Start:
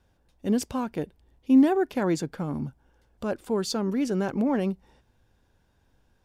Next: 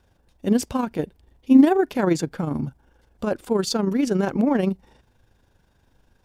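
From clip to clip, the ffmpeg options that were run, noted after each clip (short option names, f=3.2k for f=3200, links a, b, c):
-af "tremolo=f=25:d=0.519,volume=7dB"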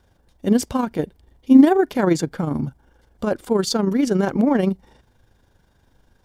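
-af "bandreject=f=2.6k:w=12,volume=2.5dB"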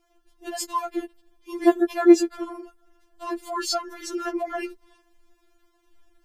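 -af "afftfilt=real='re*4*eq(mod(b,16),0)':imag='im*4*eq(mod(b,16),0)':win_size=2048:overlap=0.75"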